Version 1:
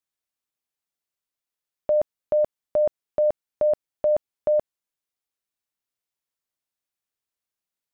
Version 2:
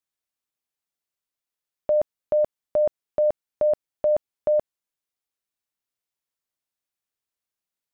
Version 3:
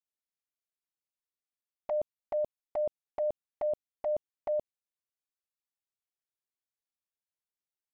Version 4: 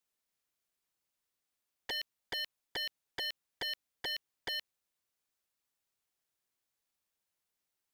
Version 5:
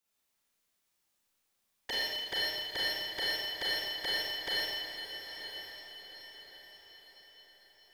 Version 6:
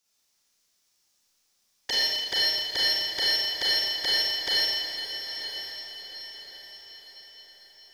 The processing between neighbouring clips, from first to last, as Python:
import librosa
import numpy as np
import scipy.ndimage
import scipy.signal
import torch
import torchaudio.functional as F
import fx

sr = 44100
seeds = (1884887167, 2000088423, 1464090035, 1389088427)

y1 = x
y2 = fx.env_flanger(y1, sr, rest_ms=10.6, full_db=-19.5)
y2 = F.gain(torch.from_numpy(y2), -8.5).numpy()
y3 = 10.0 ** (-39.0 / 20.0) * (np.abs((y2 / 10.0 ** (-39.0 / 20.0) + 3.0) % 4.0 - 2.0) - 1.0)
y3 = F.gain(torch.from_numpy(y3), 8.0).numpy()
y4 = fx.echo_diffused(y3, sr, ms=946, feedback_pct=43, wet_db=-9)
y4 = fx.rev_schroeder(y4, sr, rt60_s=1.7, comb_ms=28, drr_db=-6.5)
y5 = fx.peak_eq(y4, sr, hz=5500.0, db=11.5, octaves=0.97)
y5 = F.gain(torch.from_numpy(y5), 3.5).numpy()